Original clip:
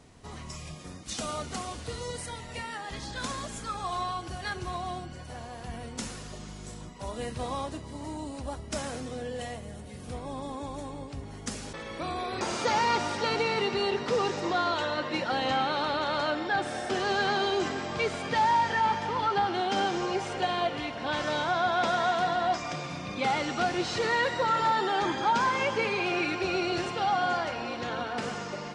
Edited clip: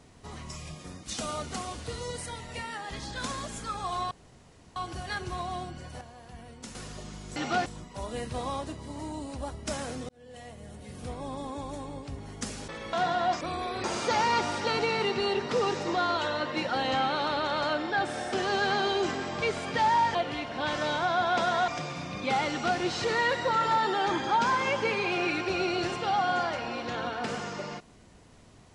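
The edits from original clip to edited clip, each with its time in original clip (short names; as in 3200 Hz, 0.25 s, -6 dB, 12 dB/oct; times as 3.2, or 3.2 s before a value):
4.11 insert room tone 0.65 s
5.36–6.1 gain -7.5 dB
9.14–10 fade in
18.72–20.61 cut
22.14–22.62 move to 11.98
23.43–23.73 copy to 6.71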